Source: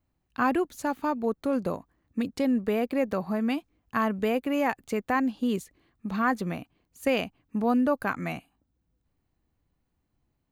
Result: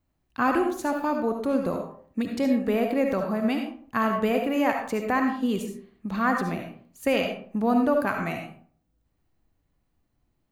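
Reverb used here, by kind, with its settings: algorithmic reverb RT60 0.51 s, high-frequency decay 0.55×, pre-delay 30 ms, DRR 3 dB; trim +1 dB

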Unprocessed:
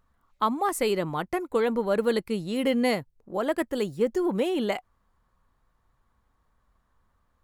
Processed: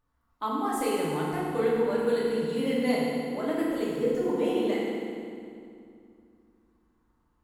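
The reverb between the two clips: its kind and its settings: FDN reverb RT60 2.4 s, low-frequency decay 1.4×, high-frequency decay 0.8×, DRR -7 dB; trim -10.5 dB

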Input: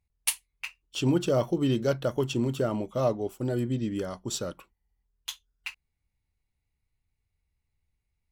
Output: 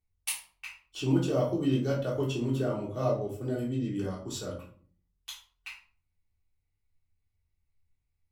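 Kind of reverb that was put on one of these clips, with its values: simulated room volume 390 m³, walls furnished, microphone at 3.5 m; trim -9.5 dB

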